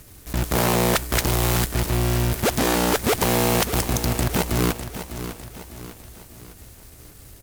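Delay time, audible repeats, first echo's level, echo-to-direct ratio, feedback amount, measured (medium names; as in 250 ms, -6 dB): 603 ms, 4, -11.0 dB, -10.0 dB, 45%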